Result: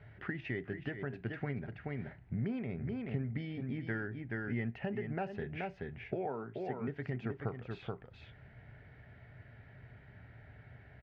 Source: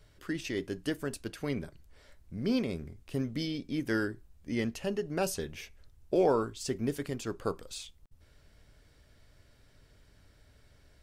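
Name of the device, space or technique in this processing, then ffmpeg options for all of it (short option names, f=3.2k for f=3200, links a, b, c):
bass amplifier: -filter_complex "[0:a]asettb=1/sr,asplit=3[a][b][c];[a]atrim=end=6.254[d];[b]atrim=start=6.25:end=6.88,asetpts=PTS-STARTPTS,afade=t=in:d=0.004:c=qsin,afade=t=out:st=0.626:d=0.004:c=qsin,highpass=f=140:w=0.5412,highpass=f=140:w=1.3066[e];[c]atrim=start=6.876[f];[d][e]acrossfade=d=0.004:c1=hsin:c2=qsin[g];[g][f]acrossfade=d=0.004:c1=qsin:c2=hsin,aecho=1:1:428:0.376,acompressor=threshold=-42dB:ratio=5,highpass=86,equalizer=f=120:t=q:w=4:g=9,equalizer=f=310:t=q:w=4:g=-7,equalizer=f=520:t=q:w=4:g=-7,equalizer=f=760:t=q:w=4:g=5,equalizer=f=1.1k:t=q:w=4:g=-9,equalizer=f=1.9k:t=q:w=4:g=5,lowpass=f=2.3k:w=0.5412,lowpass=f=2.3k:w=1.3066,volume=7.5dB"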